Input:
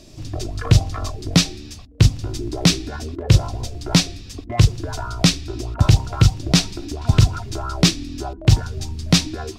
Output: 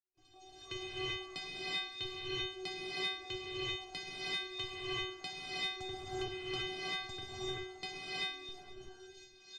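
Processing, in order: ending faded out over 1.86 s; low-pass opened by the level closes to 2600 Hz, open at -14 dBFS; gate with hold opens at -33 dBFS; treble ducked by the level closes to 830 Hz, closed at -12 dBFS; RIAA curve recording; level quantiser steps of 23 dB; metallic resonator 370 Hz, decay 0.74 s, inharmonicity 0.008; outdoor echo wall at 79 m, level -17 dB; non-linear reverb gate 0.41 s rising, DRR -8 dB; mismatched tape noise reduction decoder only; gain +7 dB

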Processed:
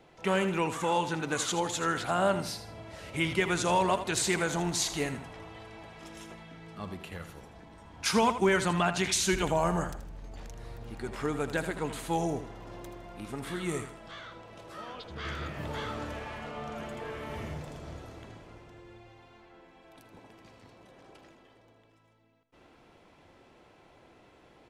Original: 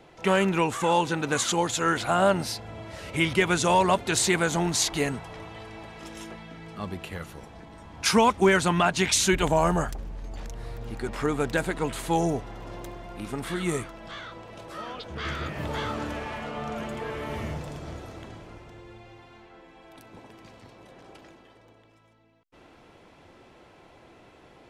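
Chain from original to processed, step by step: feedback echo 80 ms, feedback 33%, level -11 dB; gain -5.5 dB

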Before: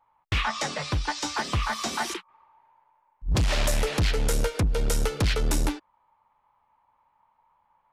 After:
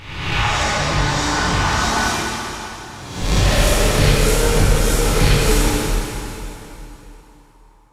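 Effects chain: spectral swells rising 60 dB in 1.08 s; plate-style reverb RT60 3.2 s, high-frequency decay 0.9×, DRR -7 dB; gain -1 dB

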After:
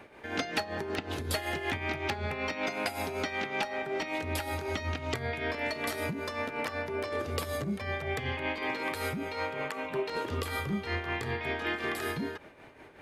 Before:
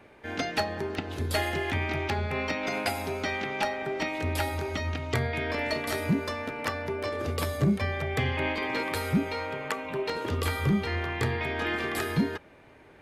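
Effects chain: low shelf 200 Hz -5 dB; compressor, threshold -32 dBFS, peak gain reduction 9.5 dB; tremolo 5.3 Hz, depth 59%; gain +5 dB

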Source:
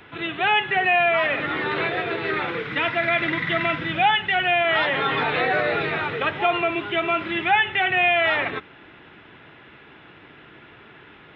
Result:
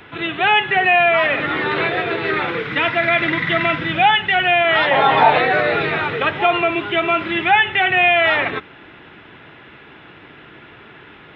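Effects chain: 4.91–5.38 band shelf 750 Hz +11 dB 1 oct; gain +5 dB

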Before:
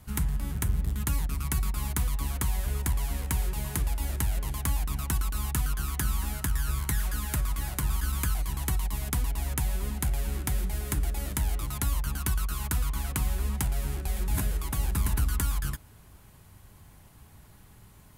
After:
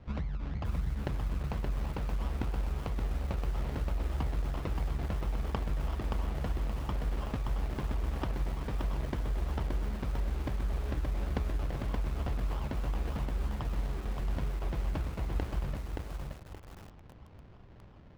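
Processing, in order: compressor 8:1, threshold -31 dBFS, peak gain reduction 10.5 dB; decimation with a swept rate 29×, swing 60% 3 Hz; air absorption 200 m; lo-fi delay 0.574 s, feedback 35%, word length 8-bit, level -3 dB

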